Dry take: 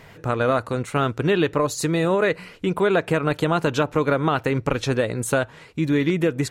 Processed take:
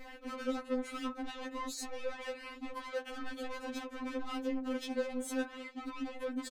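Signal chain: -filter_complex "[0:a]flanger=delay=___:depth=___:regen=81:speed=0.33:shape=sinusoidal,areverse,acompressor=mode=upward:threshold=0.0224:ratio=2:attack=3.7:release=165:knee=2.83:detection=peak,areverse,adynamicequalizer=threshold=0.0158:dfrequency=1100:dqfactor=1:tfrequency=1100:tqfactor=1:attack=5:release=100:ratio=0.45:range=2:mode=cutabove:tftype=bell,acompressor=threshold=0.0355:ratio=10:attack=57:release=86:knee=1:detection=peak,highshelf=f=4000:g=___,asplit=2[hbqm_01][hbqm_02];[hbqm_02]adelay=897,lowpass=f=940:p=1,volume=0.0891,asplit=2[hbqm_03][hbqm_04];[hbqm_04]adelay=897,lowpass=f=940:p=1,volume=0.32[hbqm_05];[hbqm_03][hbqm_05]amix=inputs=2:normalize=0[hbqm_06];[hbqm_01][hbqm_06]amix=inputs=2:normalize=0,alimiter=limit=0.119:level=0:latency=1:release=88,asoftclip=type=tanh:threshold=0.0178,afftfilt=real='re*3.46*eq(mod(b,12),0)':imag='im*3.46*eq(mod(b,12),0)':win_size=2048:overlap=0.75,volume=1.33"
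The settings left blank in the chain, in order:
3.2, 4.4, -10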